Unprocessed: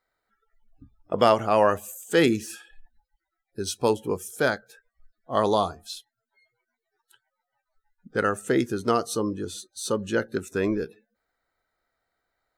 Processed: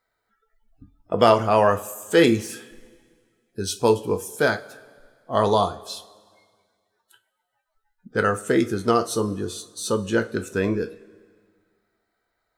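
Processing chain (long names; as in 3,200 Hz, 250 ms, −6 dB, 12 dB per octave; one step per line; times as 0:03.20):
coupled-rooms reverb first 0.26 s, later 1.9 s, from −20 dB, DRR 7 dB
level +2 dB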